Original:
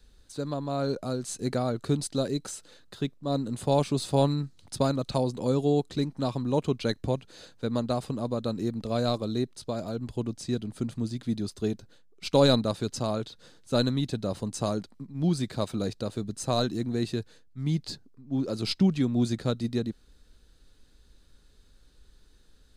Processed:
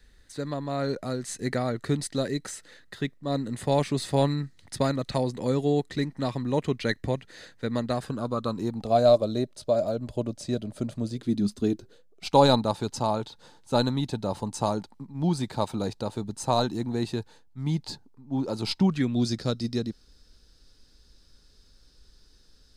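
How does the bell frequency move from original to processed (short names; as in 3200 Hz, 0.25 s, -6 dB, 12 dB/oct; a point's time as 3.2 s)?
bell +15 dB 0.35 oct
7.89 s 1900 Hz
9.11 s 600 Hz
11.05 s 600 Hz
11.48 s 200 Hz
12.35 s 880 Hz
18.85 s 880 Hz
19.25 s 5200 Hz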